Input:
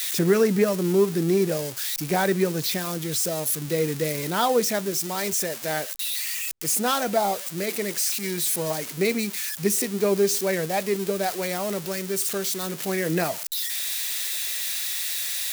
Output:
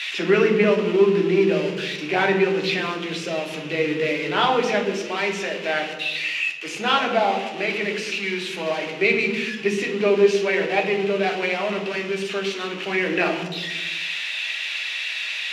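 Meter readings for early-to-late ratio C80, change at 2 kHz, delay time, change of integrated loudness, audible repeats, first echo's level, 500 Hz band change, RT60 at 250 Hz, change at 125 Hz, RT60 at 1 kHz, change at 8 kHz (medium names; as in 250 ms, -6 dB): 8.5 dB, +9.0 dB, no echo, +2.0 dB, no echo, no echo, +3.5 dB, 1.4 s, -2.0 dB, 1.1 s, -14.5 dB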